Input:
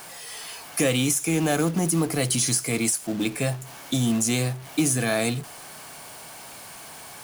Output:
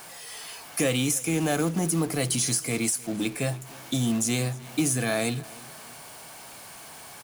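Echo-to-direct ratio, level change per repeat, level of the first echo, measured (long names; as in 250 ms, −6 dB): −21.0 dB, −6.5 dB, −22.0 dB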